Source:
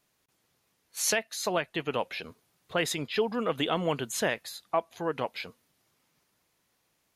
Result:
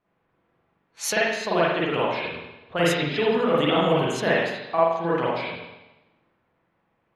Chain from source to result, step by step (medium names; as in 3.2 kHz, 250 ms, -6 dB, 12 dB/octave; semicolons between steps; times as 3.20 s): level-controlled noise filter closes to 1.6 kHz, open at -25.5 dBFS; spring tank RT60 1 s, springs 41/47 ms, chirp 45 ms, DRR -7 dB